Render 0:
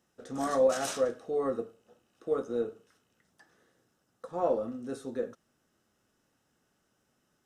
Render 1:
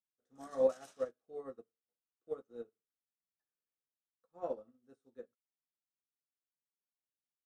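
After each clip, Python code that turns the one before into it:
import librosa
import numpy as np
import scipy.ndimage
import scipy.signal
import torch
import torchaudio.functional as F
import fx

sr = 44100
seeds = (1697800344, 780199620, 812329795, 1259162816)

y = fx.upward_expand(x, sr, threshold_db=-44.0, expansion=2.5)
y = y * librosa.db_to_amplitude(-3.0)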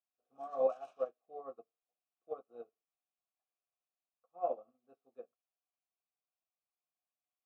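y = fx.vowel_filter(x, sr, vowel='a')
y = fx.low_shelf(y, sr, hz=220.0, db=11.5)
y = fx.hpss(y, sr, part='harmonic', gain_db=-3)
y = y * librosa.db_to_amplitude(12.0)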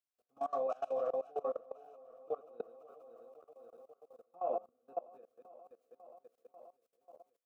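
y = fx.reverse_delay_fb(x, sr, ms=265, feedback_pct=76, wet_db=-11.0)
y = fx.level_steps(y, sr, step_db=22)
y = y * librosa.db_to_amplitude(10.5)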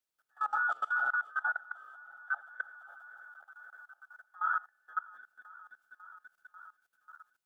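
y = fx.band_invert(x, sr, width_hz=2000)
y = y * librosa.db_to_amplitude(4.0)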